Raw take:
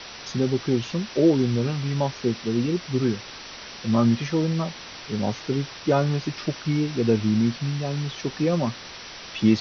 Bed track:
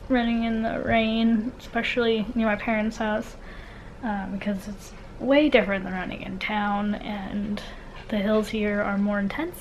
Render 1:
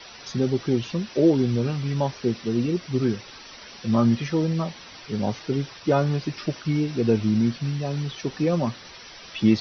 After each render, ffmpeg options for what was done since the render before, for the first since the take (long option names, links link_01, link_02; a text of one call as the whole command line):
ffmpeg -i in.wav -af "afftdn=noise_reduction=9:noise_floor=-40" out.wav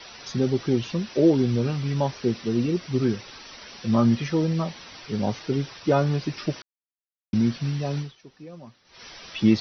ffmpeg -i in.wav -filter_complex "[0:a]asplit=5[link_01][link_02][link_03][link_04][link_05];[link_01]atrim=end=6.62,asetpts=PTS-STARTPTS,afade=type=out:start_time=6.616:duration=0.004:curve=hsin[link_06];[link_02]atrim=start=6.62:end=7.33,asetpts=PTS-STARTPTS,volume=0[link_07];[link_03]atrim=start=7.33:end=8.18,asetpts=PTS-STARTPTS,afade=type=in:duration=0.004:curve=hsin,afade=type=out:start_time=0.65:duration=0.2:curve=qua:silence=0.105925[link_08];[link_04]atrim=start=8.18:end=8.83,asetpts=PTS-STARTPTS,volume=-19.5dB[link_09];[link_05]atrim=start=8.83,asetpts=PTS-STARTPTS,afade=type=in:duration=0.2:curve=qua:silence=0.105925[link_10];[link_06][link_07][link_08][link_09][link_10]concat=n=5:v=0:a=1" out.wav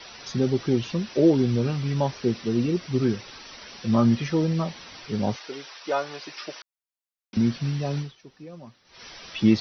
ffmpeg -i in.wav -filter_complex "[0:a]asettb=1/sr,asplit=3[link_01][link_02][link_03];[link_01]atrim=end=5.364[link_04];[link_02]atrim=start=5.36:end=7.37,asetpts=PTS-STARTPTS,afade=type=in:duration=0.004:curve=qsin,afade=type=out:start_time=2.006:duration=0.004:curve=qsin,highpass=640[link_05];[link_03]atrim=start=7.366[link_06];[link_04][link_05]acrossfade=duration=0.004:curve1=hsin:curve2=qsin[link_07];[link_07][link_06]acrossfade=duration=0.004:curve1=qsin:curve2=hsin" out.wav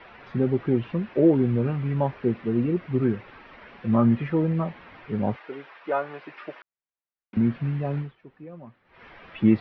ffmpeg -i in.wav -af "lowpass=frequency=2300:width=0.5412,lowpass=frequency=2300:width=1.3066" out.wav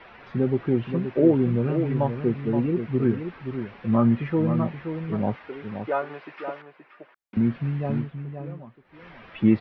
ffmpeg -i in.wav -filter_complex "[0:a]asplit=2[link_01][link_02];[link_02]adelay=524.8,volume=-8dB,highshelf=frequency=4000:gain=-11.8[link_03];[link_01][link_03]amix=inputs=2:normalize=0" out.wav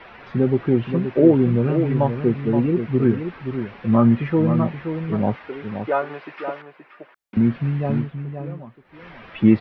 ffmpeg -i in.wav -af "volume=4.5dB" out.wav